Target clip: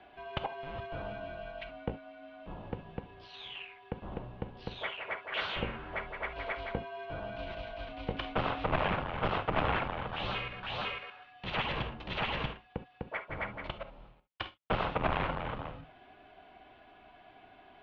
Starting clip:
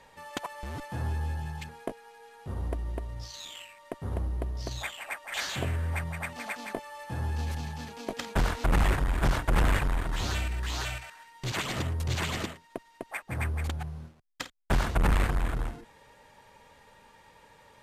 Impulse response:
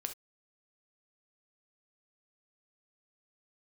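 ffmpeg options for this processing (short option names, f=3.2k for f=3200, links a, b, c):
-filter_complex "[0:a]equalizer=f=125:t=o:w=1:g=-6,equalizer=f=500:t=o:w=1:g=-7,equalizer=f=2k:t=o:w=1:g=-9,asplit=2[a][b];[1:a]atrim=start_sample=2205,highshelf=f=3.4k:g=9.5[c];[b][c]afir=irnorm=-1:irlink=0,volume=5.5dB[d];[a][d]amix=inputs=2:normalize=0,highpass=f=220:t=q:w=0.5412,highpass=f=220:t=q:w=1.307,lowpass=f=3.2k:t=q:w=0.5176,lowpass=f=3.2k:t=q:w=0.7071,lowpass=f=3.2k:t=q:w=1.932,afreqshift=-190,volume=-3.5dB"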